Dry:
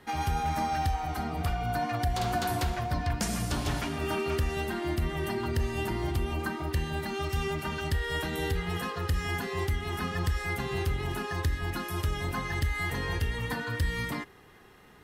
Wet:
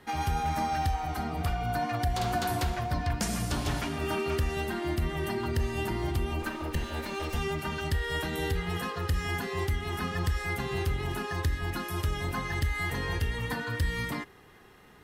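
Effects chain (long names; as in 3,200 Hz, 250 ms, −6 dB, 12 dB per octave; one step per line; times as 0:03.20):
0:06.42–0:07.39: lower of the sound and its delayed copy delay 3.3 ms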